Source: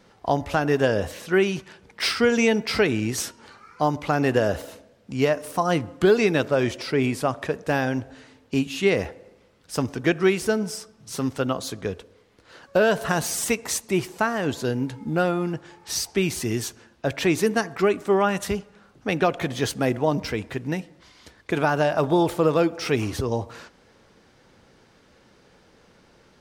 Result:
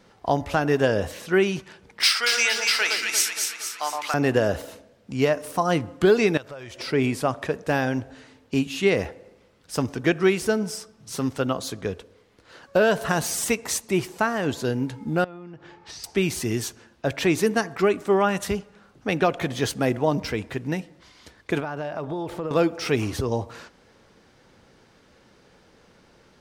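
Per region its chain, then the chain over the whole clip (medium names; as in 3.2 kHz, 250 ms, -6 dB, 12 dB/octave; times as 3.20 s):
2.03–4.14 s: high-pass 1.1 kHz + treble shelf 2.5 kHz +8 dB + echo whose repeats swap between lows and highs 116 ms, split 1.4 kHz, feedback 73%, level -2 dB
6.37–6.80 s: peaking EQ 260 Hz -9.5 dB 1.5 oct + compression 4:1, threshold -37 dBFS
15.24–16.04 s: low-pass 4.1 kHz + compression 20:1, threshold -36 dBFS
21.60–22.51 s: treble shelf 5.3 kHz -11.5 dB + compression 3:1, threshold -29 dBFS
whole clip: none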